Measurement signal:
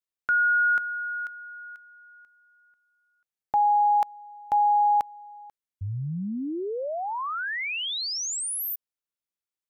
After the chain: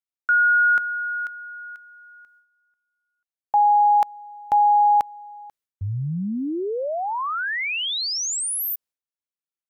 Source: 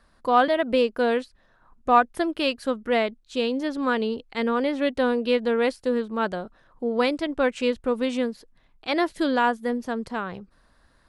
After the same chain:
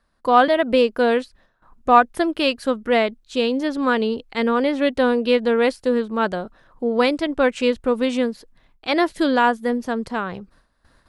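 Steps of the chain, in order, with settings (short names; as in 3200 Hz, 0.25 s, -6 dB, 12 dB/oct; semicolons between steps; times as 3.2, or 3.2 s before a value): gate with hold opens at -49 dBFS, closes at -56 dBFS, hold 0.113 s, range -12 dB; gain +4.5 dB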